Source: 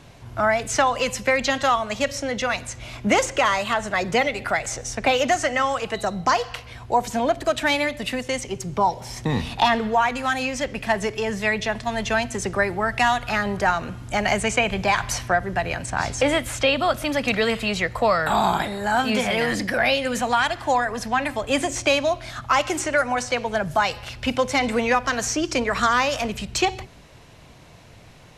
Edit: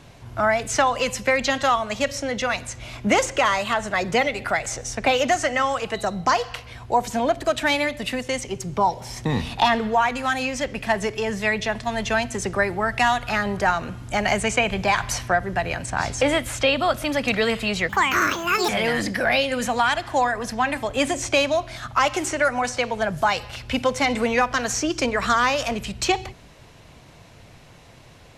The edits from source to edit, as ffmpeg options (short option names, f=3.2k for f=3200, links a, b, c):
-filter_complex "[0:a]asplit=3[a][b][c];[a]atrim=end=17.894[d];[b]atrim=start=17.89:end=19.22,asetpts=PTS-STARTPTS,asetrate=73647,aresample=44100[e];[c]atrim=start=19.216[f];[d][e]acrossfade=d=0.004:c1=hsin:c2=hsin[g];[g][f]acrossfade=d=0.004:c1=hsin:c2=hsin"